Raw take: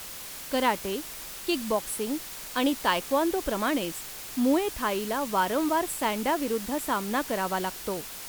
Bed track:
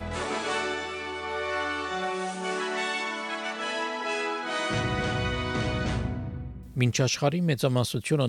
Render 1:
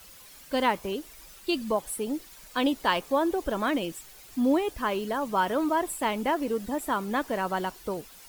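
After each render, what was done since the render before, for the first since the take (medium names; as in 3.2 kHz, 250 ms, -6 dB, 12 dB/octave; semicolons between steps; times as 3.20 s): noise reduction 12 dB, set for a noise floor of -40 dBFS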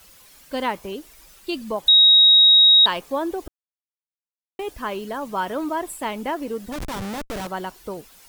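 1.88–2.86 s: bleep 3.79 kHz -9 dBFS; 3.48–4.59 s: mute; 6.72–7.47 s: Schmitt trigger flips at -31.5 dBFS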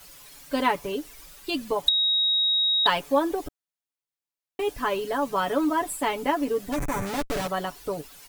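6.75–7.07 s: time-frequency box 2.6–5.7 kHz -12 dB; comb 7 ms, depth 75%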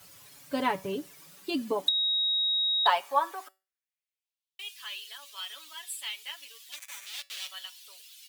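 feedback comb 190 Hz, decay 0.31 s, harmonics all, mix 50%; high-pass sweep 100 Hz -> 3.2 kHz, 0.79–4.46 s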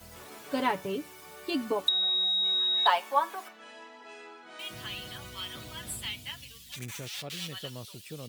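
add bed track -18 dB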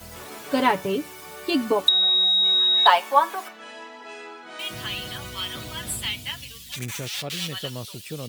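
trim +8 dB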